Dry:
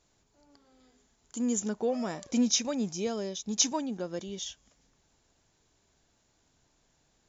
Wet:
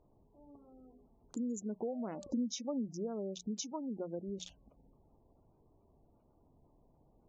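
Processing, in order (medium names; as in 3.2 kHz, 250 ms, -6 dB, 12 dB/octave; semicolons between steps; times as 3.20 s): local Wiener filter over 25 samples; compression 4:1, threshold -44 dBFS, peak gain reduction 19.5 dB; hum notches 60/120/180 Hz; 2.12–2.88 s: comb 3.5 ms, depth 41%; spectral gate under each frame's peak -25 dB strong; treble shelf 4.2 kHz -8 dB; trim +6 dB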